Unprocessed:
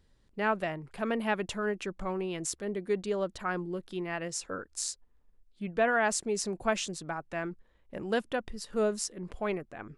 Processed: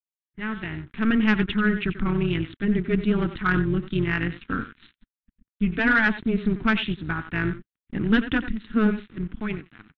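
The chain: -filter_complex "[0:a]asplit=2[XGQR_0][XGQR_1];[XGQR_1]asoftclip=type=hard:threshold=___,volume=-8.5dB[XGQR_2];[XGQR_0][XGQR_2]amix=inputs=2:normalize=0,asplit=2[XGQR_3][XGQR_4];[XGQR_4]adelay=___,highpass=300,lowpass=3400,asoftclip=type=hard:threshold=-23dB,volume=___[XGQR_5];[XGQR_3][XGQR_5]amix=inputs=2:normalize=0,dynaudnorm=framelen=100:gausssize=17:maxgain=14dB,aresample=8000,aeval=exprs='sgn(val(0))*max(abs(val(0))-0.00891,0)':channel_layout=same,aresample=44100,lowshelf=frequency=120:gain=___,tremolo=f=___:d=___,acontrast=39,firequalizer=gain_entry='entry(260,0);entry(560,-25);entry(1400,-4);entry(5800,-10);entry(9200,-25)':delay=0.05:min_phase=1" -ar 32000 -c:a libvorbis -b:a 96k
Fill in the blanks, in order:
-26.5dB, 90, -10dB, -3.5, 220, 0.788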